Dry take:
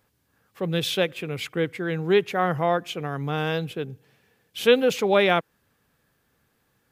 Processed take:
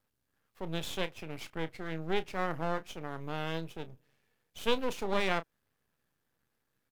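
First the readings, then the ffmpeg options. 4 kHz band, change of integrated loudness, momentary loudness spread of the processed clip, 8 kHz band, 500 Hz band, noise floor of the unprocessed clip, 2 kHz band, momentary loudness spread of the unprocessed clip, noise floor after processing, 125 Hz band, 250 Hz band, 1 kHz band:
-10.5 dB, -11.5 dB, 12 LU, -9.5 dB, -13.5 dB, -70 dBFS, -10.5 dB, 12 LU, -81 dBFS, -11.5 dB, -11.0 dB, -9.5 dB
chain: -filter_complex "[0:a]aeval=exprs='max(val(0),0)':c=same,asplit=2[s0][s1];[s1]adelay=31,volume=0.211[s2];[s0][s2]amix=inputs=2:normalize=0,volume=0.376"

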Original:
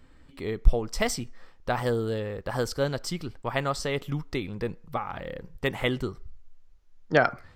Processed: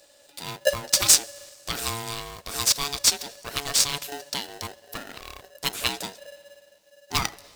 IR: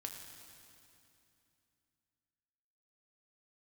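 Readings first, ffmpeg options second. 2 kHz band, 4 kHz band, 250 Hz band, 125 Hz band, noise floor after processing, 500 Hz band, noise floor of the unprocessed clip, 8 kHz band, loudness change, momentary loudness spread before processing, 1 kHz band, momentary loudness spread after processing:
-1.0 dB, +13.0 dB, -9.0 dB, -8.5 dB, -57 dBFS, -5.5 dB, -54 dBFS, +18.5 dB, +6.0 dB, 10 LU, -1.5 dB, 20 LU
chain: -filter_complex "[0:a]aexciter=amount=15.4:drive=3.8:freq=3200,asplit=2[s0][s1];[1:a]atrim=start_sample=2205[s2];[s1][s2]afir=irnorm=-1:irlink=0,volume=0.168[s3];[s0][s3]amix=inputs=2:normalize=0,aeval=exprs='val(0)*sgn(sin(2*PI*570*n/s))':c=same,volume=0.422"

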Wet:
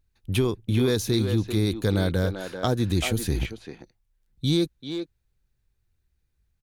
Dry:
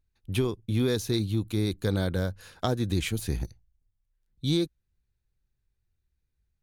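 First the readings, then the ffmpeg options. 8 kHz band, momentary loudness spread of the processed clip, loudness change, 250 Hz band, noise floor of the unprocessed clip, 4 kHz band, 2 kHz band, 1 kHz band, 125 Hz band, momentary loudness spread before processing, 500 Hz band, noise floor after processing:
+4.5 dB, 10 LU, +3.5 dB, +4.0 dB, -79 dBFS, +4.0 dB, +4.5 dB, +4.0 dB, +3.5 dB, 8 LU, +4.0 dB, -74 dBFS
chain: -filter_complex "[0:a]asplit=2[s0][s1];[s1]adelay=390,highpass=300,lowpass=3400,asoftclip=type=hard:threshold=0.0841,volume=0.447[s2];[s0][s2]amix=inputs=2:normalize=0,asplit=2[s3][s4];[s4]alimiter=limit=0.0794:level=0:latency=1,volume=0.794[s5];[s3][s5]amix=inputs=2:normalize=0"

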